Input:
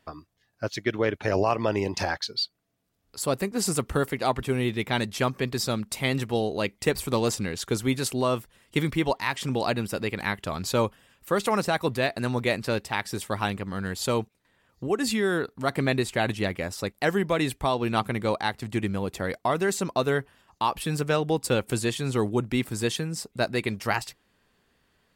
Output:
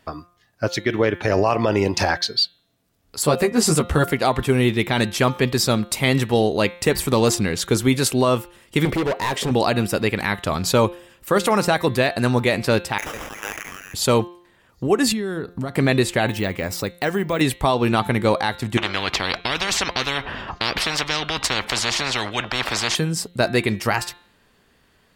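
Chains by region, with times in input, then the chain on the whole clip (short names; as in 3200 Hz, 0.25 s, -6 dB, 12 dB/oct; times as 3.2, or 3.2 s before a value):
3.23–4.04 high shelf 9000 Hz -7 dB + doubler 13 ms -3 dB
8.85–9.51 bell 470 Hz +14 dB 1.2 oct + compressor 4:1, threshold -19 dBFS + hard clip -27 dBFS
12.98–13.94 ladder high-pass 1900 Hz, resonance 25% + sample-rate reducer 4300 Hz + sustainer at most 29 dB/s
15.12–15.75 compressor 4:1, threshold -39 dBFS + low shelf 380 Hz +10 dB
16.27–17.41 compressor 2:1, threshold -30 dBFS + careless resampling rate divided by 2×, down none, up hold
18.77–22.95 air absorption 250 m + spectral compressor 10:1
whole clip: de-hum 175.2 Hz, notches 24; maximiser +14.5 dB; gain -6 dB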